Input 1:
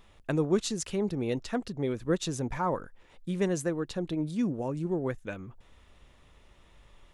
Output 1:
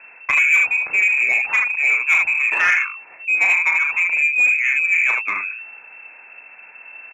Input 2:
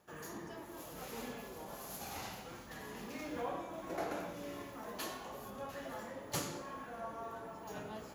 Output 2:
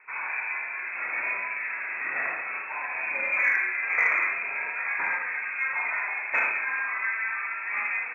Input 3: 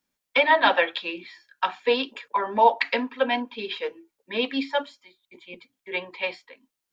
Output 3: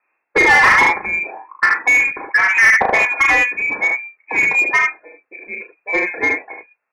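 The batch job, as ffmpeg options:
-filter_complex "[0:a]lowpass=f=2.3k:t=q:w=0.5098,lowpass=f=2.3k:t=q:w=0.6013,lowpass=f=2.3k:t=q:w=0.9,lowpass=f=2.3k:t=q:w=2.563,afreqshift=-2700,aecho=1:1:35|76:0.531|0.596,asplit=2[a][b];[b]highpass=f=720:p=1,volume=22dB,asoftclip=type=tanh:threshold=-3dB[c];[a][c]amix=inputs=2:normalize=0,lowpass=f=1.7k:p=1,volume=-6dB,volume=2dB"

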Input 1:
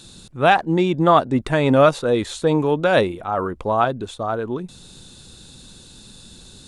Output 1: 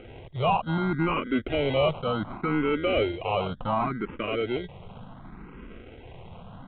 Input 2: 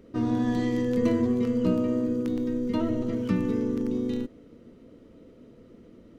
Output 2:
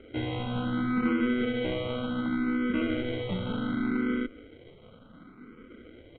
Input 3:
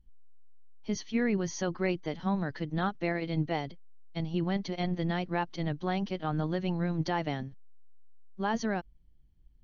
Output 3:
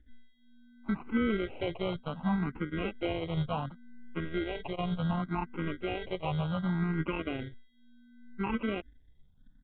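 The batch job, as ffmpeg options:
-filter_complex "[0:a]asplit=2[a][b];[b]acompressor=threshold=-28dB:ratio=6,volume=0dB[c];[a][c]amix=inputs=2:normalize=0,tremolo=f=240:d=0.462,aresample=11025,asoftclip=type=tanh:threshold=-17.5dB,aresample=44100,acrusher=samples=25:mix=1:aa=0.000001,aresample=8000,aresample=44100,asplit=2[d][e];[e]afreqshift=0.68[f];[d][f]amix=inputs=2:normalize=1"

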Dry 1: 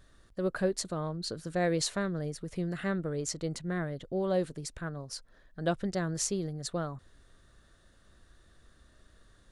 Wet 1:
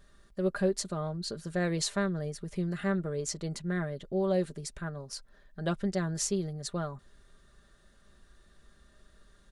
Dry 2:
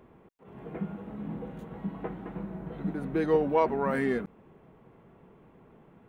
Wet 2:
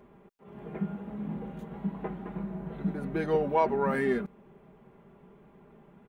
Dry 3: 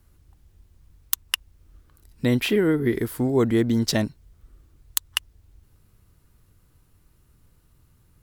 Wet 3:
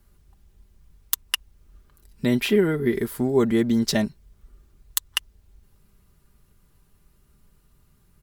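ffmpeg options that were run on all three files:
-af "aecho=1:1:5:0.51,volume=-1dB"

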